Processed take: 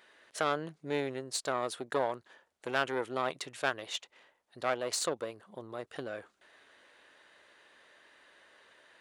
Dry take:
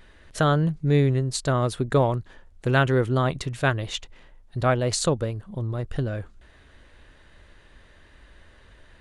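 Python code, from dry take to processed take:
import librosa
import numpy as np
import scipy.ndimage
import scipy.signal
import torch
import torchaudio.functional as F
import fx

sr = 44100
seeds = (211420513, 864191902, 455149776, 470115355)

p1 = fx.diode_clip(x, sr, knee_db=-19.5)
p2 = scipy.signal.sosfilt(scipy.signal.butter(2, 460.0, 'highpass', fs=sr, output='sos'), p1)
p3 = fx.rider(p2, sr, range_db=3, speed_s=0.5)
p4 = p2 + F.gain(torch.from_numpy(p3), -3.0).numpy()
y = F.gain(torch.from_numpy(p4), -9.0).numpy()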